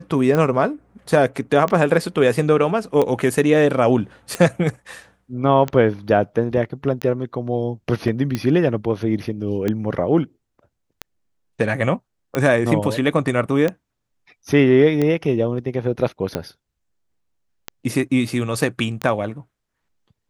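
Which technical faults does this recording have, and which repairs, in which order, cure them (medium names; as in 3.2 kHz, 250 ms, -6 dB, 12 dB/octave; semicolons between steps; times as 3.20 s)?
tick 45 rpm -9 dBFS
8.08 s: dropout 2 ms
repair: de-click; interpolate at 8.08 s, 2 ms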